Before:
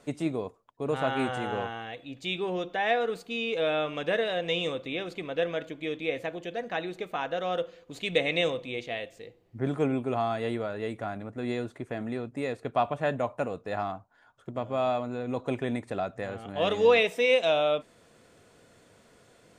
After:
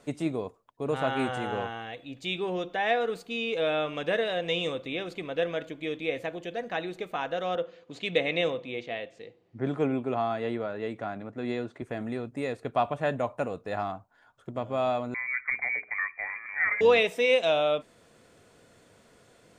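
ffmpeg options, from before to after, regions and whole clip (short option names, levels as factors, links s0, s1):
-filter_complex "[0:a]asettb=1/sr,asplit=3[s0][s1][s2];[s0]atrim=end=7.554[s3];[s1]atrim=start=7.55:end=11.82,asetpts=PTS-STARTPTS,afade=t=in:d=0.004:c=qsin,afade=t=out:st=4.266:d=0.004:c=qsin,highpass=120,lowpass=5900,adynamicequalizer=threshold=0.00708:dfrequency=2500:dqfactor=0.7:tfrequency=2500:tqfactor=0.7:attack=5:release=100:ratio=0.375:range=2.5:mode=cutabove:tftype=highshelf[s4];[s2]atrim=start=11.816[s5];[s3][s4]acrossfade=d=0.004:c1=hsin:c2=qsin[s6];[s6][s5]acrossfade=d=0.004:c1=qsin:c2=hsin,asettb=1/sr,asplit=3[s7][s8][s9];[s7]atrim=end=15.144[s10];[s8]atrim=start=15.14:end=16.81,asetpts=PTS-STARTPTS,afade=t=in:d=0.004:c=qsin,afade=t=out:st=1.666:d=0.004:c=qsin,lowpass=f=2100:t=q:w=0.5098,lowpass=f=2100:t=q:w=0.6013,lowpass=f=2100:t=q:w=0.9,lowpass=f=2100:t=q:w=2.563,afreqshift=-2500,bandreject=f=60:t=h:w=6,bandreject=f=120:t=h:w=6,bandreject=f=180:t=h:w=6,bandreject=f=240:t=h:w=6,bandreject=f=300:t=h:w=6,bandreject=f=360:t=h:w=6,bandreject=f=420:t=h:w=6,bandreject=f=480:t=h:w=6[s11];[s9]atrim=start=16.806[s12];[s10][s11]acrossfade=d=0.004:c1=hsin:c2=qsin[s13];[s13][s12]acrossfade=d=0.004:c1=qsin:c2=hsin"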